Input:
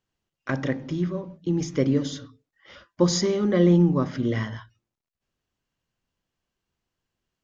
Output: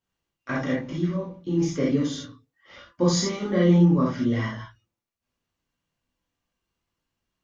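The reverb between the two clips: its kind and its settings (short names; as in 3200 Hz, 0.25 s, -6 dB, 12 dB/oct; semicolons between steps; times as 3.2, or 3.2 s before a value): non-linear reverb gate 0.1 s flat, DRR -7 dB; gain -6.5 dB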